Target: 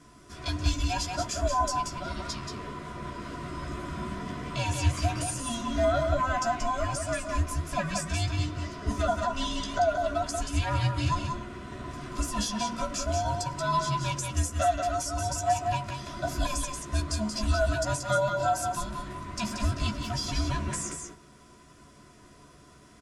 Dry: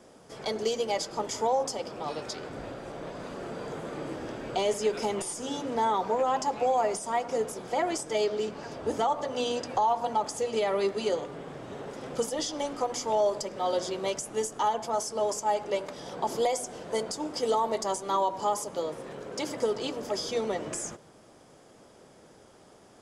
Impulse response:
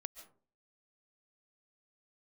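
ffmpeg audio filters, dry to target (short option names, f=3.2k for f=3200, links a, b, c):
-filter_complex "[0:a]afftfilt=real='real(if(between(b,1,1008),(2*floor((b-1)/24)+1)*24-b,b),0)':imag='imag(if(between(b,1,1008),(2*floor((b-1)/24)+1)*24-b,b),0)*if(between(b,1,1008),-1,1)':win_size=2048:overlap=0.75,asuperstop=centerf=850:order=20:qfactor=4.4,asplit=2[a][b];[b]adelay=14,volume=-5.5dB[c];[a][c]amix=inputs=2:normalize=0,aecho=1:1:181:0.562"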